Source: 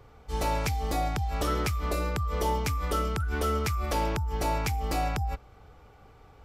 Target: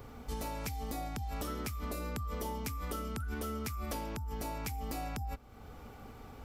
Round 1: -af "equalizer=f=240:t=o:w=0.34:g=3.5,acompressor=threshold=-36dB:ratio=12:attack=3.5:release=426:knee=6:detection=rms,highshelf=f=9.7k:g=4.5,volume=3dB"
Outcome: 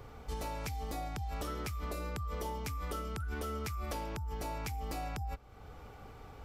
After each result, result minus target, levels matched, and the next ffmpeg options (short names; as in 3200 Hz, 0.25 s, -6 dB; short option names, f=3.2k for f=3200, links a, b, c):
250 Hz band -3.0 dB; 8000 Hz band -2.0 dB
-af "equalizer=f=240:t=o:w=0.34:g=13.5,acompressor=threshold=-36dB:ratio=12:attack=3.5:release=426:knee=6:detection=rms,highshelf=f=9.7k:g=4.5,volume=3dB"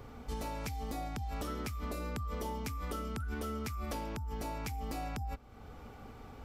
8000 Hz band -3.0 dB
-af "equalizer=f=240:t=o:w=0.34:g=13.5,acompressor=threshold=-36dB:ratio=12:attack=3.5:release=426:knee=6:detection=rms,highshelf=f=9.7k:g=13.5,volume=3dB"